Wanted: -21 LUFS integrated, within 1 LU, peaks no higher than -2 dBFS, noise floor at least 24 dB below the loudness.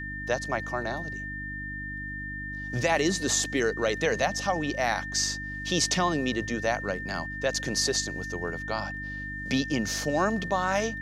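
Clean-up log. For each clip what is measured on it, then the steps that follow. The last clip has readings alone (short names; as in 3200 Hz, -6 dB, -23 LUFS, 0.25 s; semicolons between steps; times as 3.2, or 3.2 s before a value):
hum 50 Hz; harmonics up to 300 Hz; hum level -37 dBFS; steady tone 1800 Hz; tone level -35 dBFS; loudness -28.5 LUFS; peak -9.5 dBFS; loudness target -21.0 LUFS
-> de-hum 50 Hz, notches 6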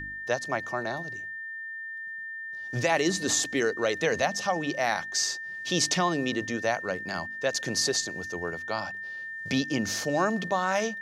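hum none; steady tone 1800 Hz; tone level -35 dBFS
-> notch 1800 Hz, Q 30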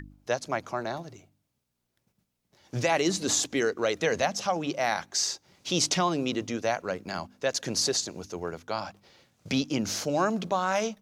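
steady tone none; loudness -28.5 LUFS; peak -10.0 dBFS; loudness target -21.0 LUFS
-> gain +7.5 dB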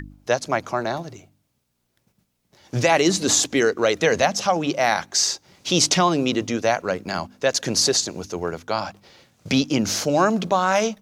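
loudness -21.0 LUFS; peak -2.5 dBFS; noise floor -72 dBFS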